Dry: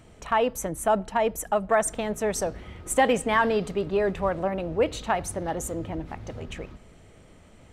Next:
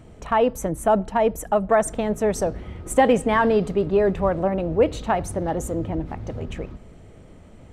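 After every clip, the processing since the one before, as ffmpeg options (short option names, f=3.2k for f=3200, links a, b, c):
-af "tiltshelf=f=970:g=4.5,volume=2.5dB"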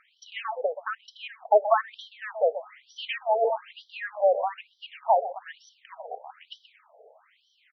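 -filter_complex "[0:a]asplit=2[a][b];[b]adelay=128.3,volume=-12dB,highshelf=f=4k:g=-2.89[c];[a][c]amix=inputs=2:normalize=0,afftfilt=real='re*between(b*sr/1024,570*pow(4300/570,0.5+0.5*sin(2*PI*1.1*pts/sr))/1.41,570*pow(4300/570,0.5+0.5*sin(2*PI*1.1*pts/sr))*1.41)':imag='im*between(b*sr/1024,570*pow(4300/570,0.5+0.5*sin(2*PI*1.1*pts/sr))/1.41,570*pow(4300/570,0.5+0.5*sin(2*PI*1.1*pts/sr))*1.41)':win_size=1024:overlap=0.75,volume=2.5dB"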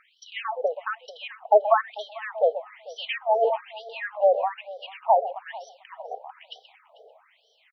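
-af "aecho=1:1:444:0.1,volume=2dB"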